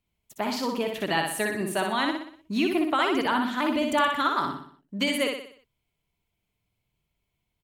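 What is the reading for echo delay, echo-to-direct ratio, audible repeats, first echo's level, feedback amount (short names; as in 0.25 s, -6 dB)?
61 ms, -3.0 dB, 5, -4.0 dB, 47%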